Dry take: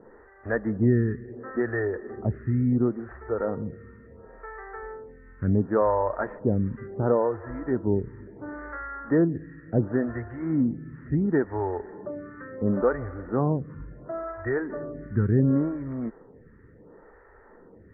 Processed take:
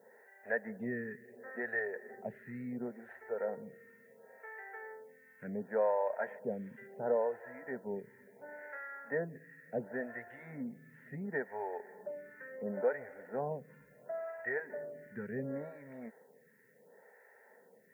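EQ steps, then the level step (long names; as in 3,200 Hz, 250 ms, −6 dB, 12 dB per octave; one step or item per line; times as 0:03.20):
high-pass filter 100 Hz
first difference
phaser with its sweep stopped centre 320 Hz, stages 6
+15.5 dB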